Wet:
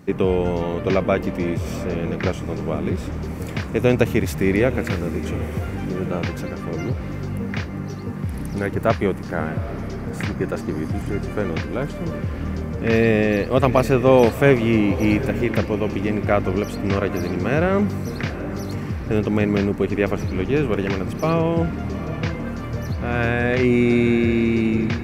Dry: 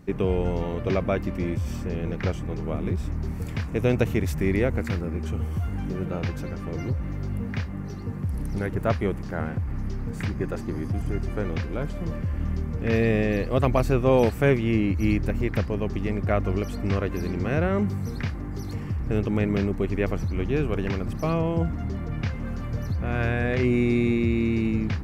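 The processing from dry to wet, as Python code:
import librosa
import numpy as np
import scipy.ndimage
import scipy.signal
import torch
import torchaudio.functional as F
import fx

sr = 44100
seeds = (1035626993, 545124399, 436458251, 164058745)

y = fx.highpass(x, sr, hz=150.0, slope=6)
y = fx.echo_diffused(y, sr, ms=810, feedback_pct=41, wet_db=-13.5)
y = y * 10.0 ** (6.5 / 20.0)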